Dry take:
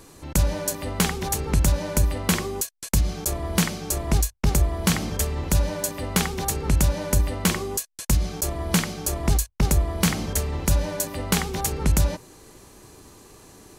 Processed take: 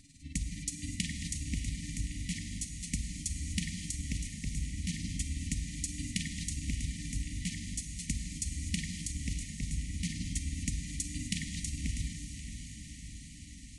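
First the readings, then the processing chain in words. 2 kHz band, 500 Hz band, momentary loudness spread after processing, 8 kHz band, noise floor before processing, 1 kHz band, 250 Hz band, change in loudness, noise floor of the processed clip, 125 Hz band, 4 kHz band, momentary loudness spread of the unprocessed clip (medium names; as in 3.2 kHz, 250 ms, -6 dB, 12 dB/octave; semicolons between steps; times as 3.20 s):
-12.5 dB, under -35 dB, 5 LU, -10.5 dB, -49 dBFS, under -40 dB, -12.0 dB, -13.0 dB, -48 dBFS, -12.5 dB, -10.5 dB, 5 LU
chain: FFT band-reject 300–1800 Hz; compression 6:1, threshold -23 dBFS, peak gain reduction 8.5 dB; tremolo 19 Hz, depth 65%; echo that smears into a reverb 615 ms, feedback 68%, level -9 dB; gated-style reverb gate 280 ms flat, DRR 6.5 dB; resampled via 22.05 kHz; trim -5.5 dB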